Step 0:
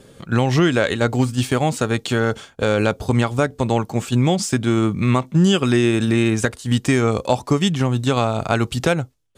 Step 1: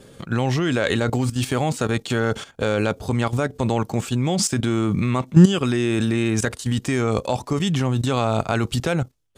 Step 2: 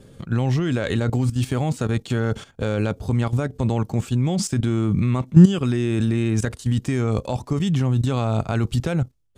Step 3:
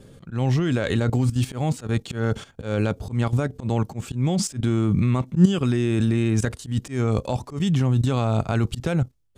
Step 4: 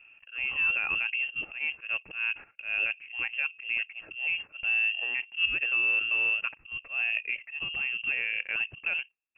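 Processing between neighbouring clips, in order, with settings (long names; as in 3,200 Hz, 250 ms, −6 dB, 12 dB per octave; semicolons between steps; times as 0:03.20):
output level in coarse steps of 13 dB; level +5.5 dB
low-shelf EQ 240 Hz +11 dB; level −6 dB
volume swells 122 ms
four-pole ladder high-pass 270 Hz, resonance 50%; voice inversion scrambler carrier 3,000 Hz; level +2 dB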